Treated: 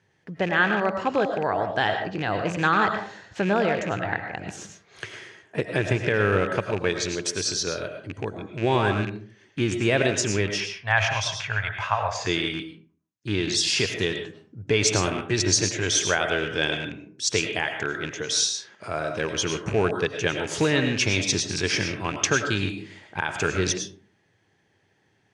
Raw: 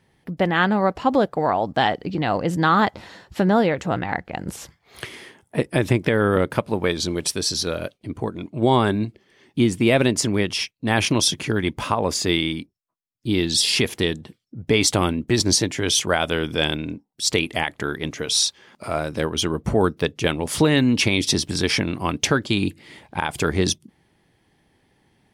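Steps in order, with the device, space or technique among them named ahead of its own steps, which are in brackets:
0:10.60–0:12.27: drawn EQ curve 110 Hz 0 dB, 180 Hz −16 dB, 350 Hz −26 dB, 660 Hz +4 dB, 2,200 Hz +3 dB, 11,000 Hz −15 dB
comb and all-pass reverb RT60 0.45 s, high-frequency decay 0.55×, pre-delay 65 ms, DRR 5 dB
car door speaker with a rattle (loose part that buzzes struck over −24 dBFS, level −21 dBFS; loudspeaker in its box 100–8,100 Hz, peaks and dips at 100 Hz +9 dB, 240 Hz −5 dB, 420 Hz +4 dB, 1,600 Hz +8 dB, 2,600 Hz +3 dB, 6,400 Hz +8 dB)
level −6 dB

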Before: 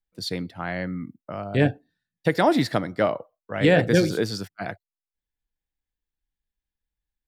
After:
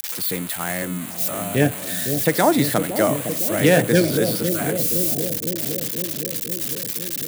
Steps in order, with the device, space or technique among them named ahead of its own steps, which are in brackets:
budget class-D amplifier (gap after every zero crossing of 0.089 ms; spike at every zero crossing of −14.5 dBFS)
high-pass filter 110 Hz
bucket-brigade delay 510 ms, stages 2,048, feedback 75%, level −7 dB
level +2.5 dB

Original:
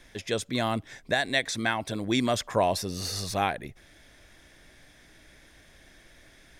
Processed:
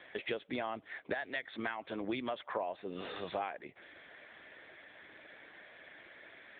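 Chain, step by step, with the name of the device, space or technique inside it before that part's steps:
0:01.35–0:02.06: dynamic equaliser 590 Hz, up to −3 dB, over −39 dBFS, Q 2
voicemail (band-pass filter 380–3,100 Hz; downward compressor 12 to 1, threshold −39 dBFS, peak gain reduction 19.5 dB; level +6 dB; AMR narrowband 7.95 kbit/s 8,000 Hz)

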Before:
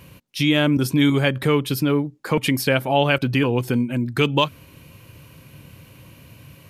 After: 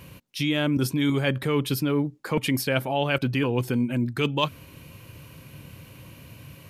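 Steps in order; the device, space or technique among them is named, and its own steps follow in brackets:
compression on the reversed sound (reversed playback; downward compressor, threshold −20 dBFS, peak gain reduction 8 dB; reversed playback)

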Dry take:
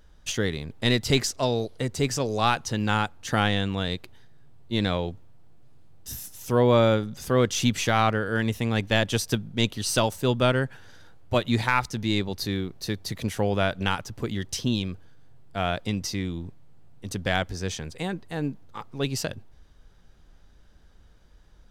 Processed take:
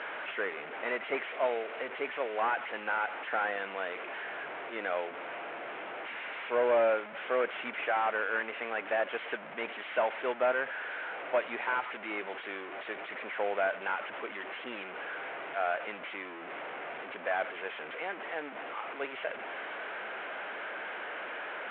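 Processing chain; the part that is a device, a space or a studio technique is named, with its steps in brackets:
digital answering machine (band-pass filter 390–3,100 Hz; linear delta modulator 16 kbit/s, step −31.5 dBFS; loudspeaker in its box 420–3,700 Hz, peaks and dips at 640 Hz +4 dB, 1,500 Hz +5 dB, 2,200 Hz +4 dB)
level −3.5 dB

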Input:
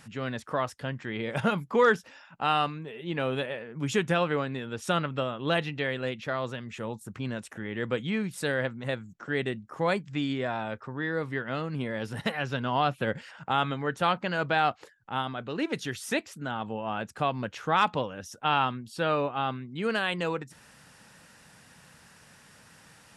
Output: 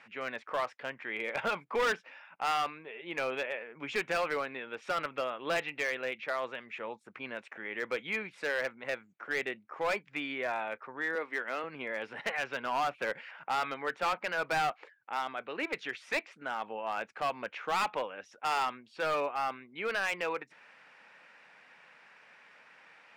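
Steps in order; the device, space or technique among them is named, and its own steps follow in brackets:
megaphone (band-pass filter 490–2,600 Hz; parametric band 2,300 Hz +9 dB 0.39 octaves; hard clipping −24.5 dBFS, distortion −9 dB)
0:11.15–0:11.64: high-pass filter 200 Hz 24 dB per octave
level −1 dB

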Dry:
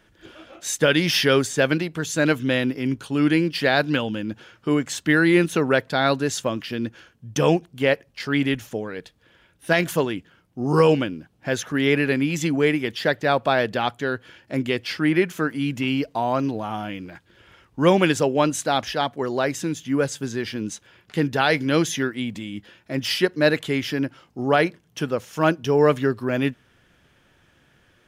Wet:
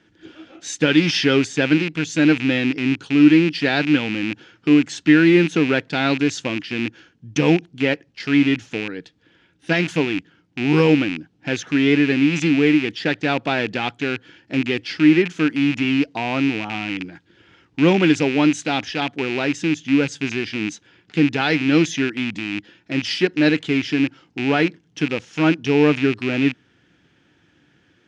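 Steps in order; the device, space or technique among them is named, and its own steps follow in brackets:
car door speaker with a rattle (loose part that buzzes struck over −32 dBFS, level −15 dBFS; loudspeaker in its box 84–6,700 Hz, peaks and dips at 170 Hz +3 dB, 300 Hz +9 dB, 600 Hz −7 dB, 1,100 Hz −6 dB)

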